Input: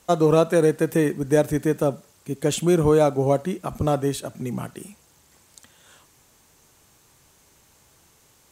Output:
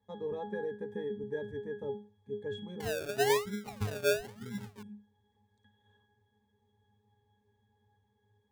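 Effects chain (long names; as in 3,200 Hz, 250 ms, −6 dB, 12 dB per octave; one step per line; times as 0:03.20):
resonances in every octave G#, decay 0.32 s
0:02.80–0:04.83: sample-and-hold swept by an LFO 34×, swing 60% 1 Hz
level +2.5 dB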